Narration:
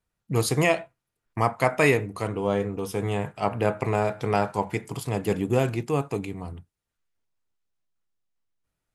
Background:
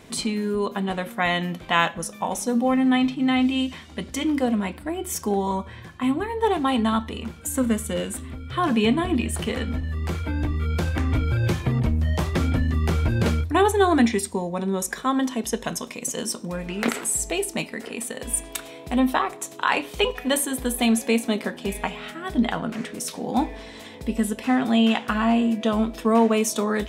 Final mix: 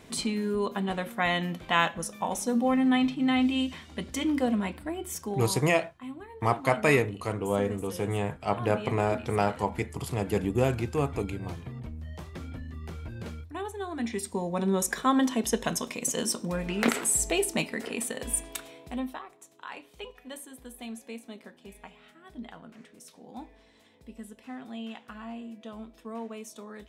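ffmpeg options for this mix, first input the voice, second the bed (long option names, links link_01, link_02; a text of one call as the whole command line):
ffmpeg -i stem1.wav -i stem2.wav -filter_complex "[0:a]adelay=5050,volume=-2.5dB[link_01];[1:a]volume=12.5dB,afade=type=out:start_time=4.72:duration=0.97:silence=0.211349,afade=type=in:start_time=13.96:duration=0.71:silence=0.149624,afade=type=out:start_time=17.96:duration=1.25:silence=0.112202[link_02];[link_01][link_02]amix=inputs=2:normalize=0" out.wav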